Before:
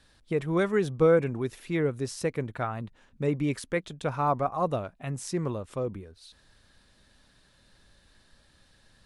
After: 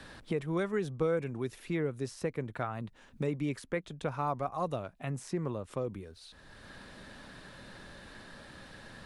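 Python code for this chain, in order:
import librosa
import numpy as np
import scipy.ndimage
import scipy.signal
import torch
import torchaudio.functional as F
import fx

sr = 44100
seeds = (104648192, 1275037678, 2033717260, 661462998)

y = fx.band_squash(x, sr, depth_pct=70)
y = y * 10.0 ** (-5.5 / 20.0)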